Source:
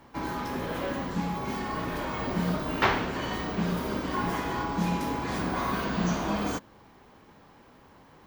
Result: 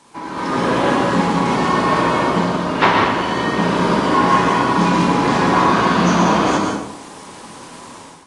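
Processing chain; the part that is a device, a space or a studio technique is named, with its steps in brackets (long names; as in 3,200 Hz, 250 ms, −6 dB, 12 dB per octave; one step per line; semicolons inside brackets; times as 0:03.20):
filmed off a television (band-pass filter 150–7,700 Hz; parametric band 980 Hz +7 dB 0.31 octaves; convolution reverb RT60 0.80 s, pre-delay 113 ms, DRR 1.5 dB; white noise bed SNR 25 dB; automatic gain control gain up to 13 dB; AAC 32 kbit/s 22,050 Hz)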